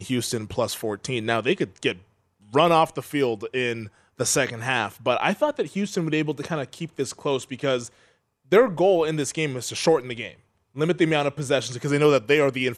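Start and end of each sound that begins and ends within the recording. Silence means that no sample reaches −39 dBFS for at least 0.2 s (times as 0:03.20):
0:02.53–0:03.88
0:04.19–0:07.88
0:08.52–0:10.34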